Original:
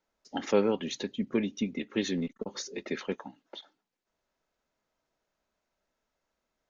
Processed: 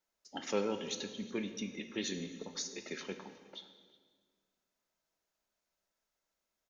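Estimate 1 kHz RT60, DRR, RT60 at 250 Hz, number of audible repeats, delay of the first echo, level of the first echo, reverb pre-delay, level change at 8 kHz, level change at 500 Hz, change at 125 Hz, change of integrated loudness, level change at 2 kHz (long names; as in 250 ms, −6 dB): 1.5 s, 7.0 dB, 2.0 s, 1, 364 ms, −22.5 dB, 3 ms, can't be measured, −8.5 dB, −8.5 dB, −7.5 dB, −5.0 dB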